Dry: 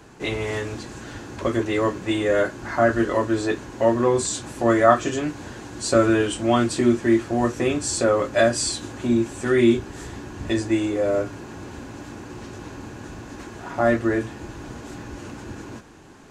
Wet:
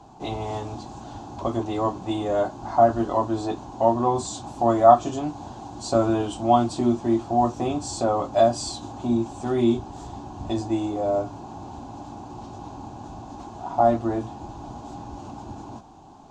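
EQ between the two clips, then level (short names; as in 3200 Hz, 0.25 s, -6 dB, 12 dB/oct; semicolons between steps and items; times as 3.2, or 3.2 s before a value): EQ curve 290 Hz 0 dB, 500 Hz -7 dB, 760 Hz +12 dB, 1100 Hz +1 dB, 1800 Hz -18 dB, 3500 Hz -3 dB, 7100 Hz -5 dB, 11000 Hz -16 dB; -2.0 dB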